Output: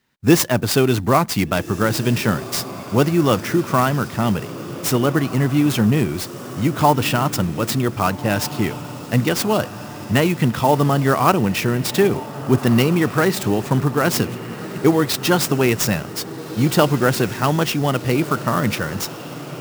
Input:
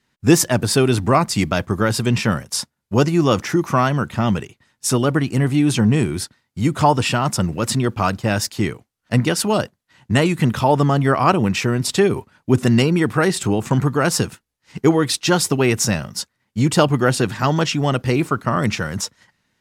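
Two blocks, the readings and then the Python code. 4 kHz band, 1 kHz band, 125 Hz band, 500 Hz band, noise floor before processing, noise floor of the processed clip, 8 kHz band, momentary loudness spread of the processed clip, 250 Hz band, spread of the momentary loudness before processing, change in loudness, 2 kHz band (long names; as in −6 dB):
−0.5 dB, 0.0 dB, −1.0 dB, 0.0 dB, −74 dBFS, −33 dBFS, −2.5 dB, 9 LU, 0.0 dB, 8 LU, −0.5 dB, 0.0 dB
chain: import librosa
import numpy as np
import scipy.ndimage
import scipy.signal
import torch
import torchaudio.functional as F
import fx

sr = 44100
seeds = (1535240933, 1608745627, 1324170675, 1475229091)

y = fx.low_shelf(x, sr, hz=61.0, db=-6.5)
y = fx.echo_diffused(y, sr, ms=1582, feedback_pct=55, wet_db=-14.0)
y = fx.clock_jitter(y, sr, seeds[0], jitter_ms=0.023)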